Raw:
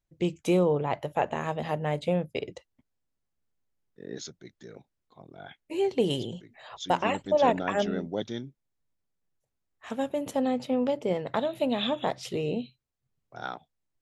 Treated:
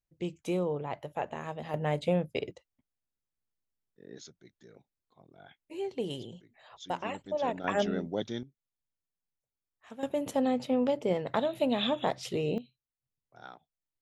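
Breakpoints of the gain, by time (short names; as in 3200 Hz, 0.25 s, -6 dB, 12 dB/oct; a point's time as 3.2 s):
-7.5 dB
from 1.74 s -1 dB
from 2.51 s -9 dB
from 7.64 s -1.5 dB
from 8.43 s -12 dB
from 10.03 s -1 dB
from 12.58 s -12 dB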